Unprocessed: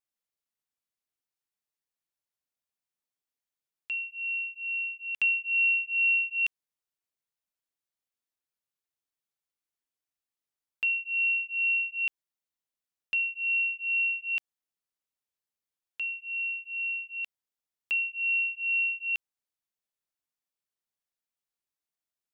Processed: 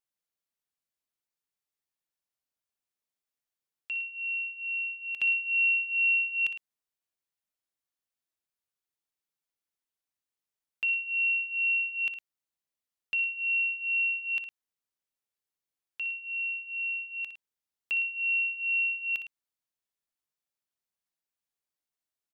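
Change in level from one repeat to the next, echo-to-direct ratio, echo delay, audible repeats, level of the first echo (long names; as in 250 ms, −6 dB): repeats not evenly spaced, −9.0 dB, 60 ms, 2, −11.0 dB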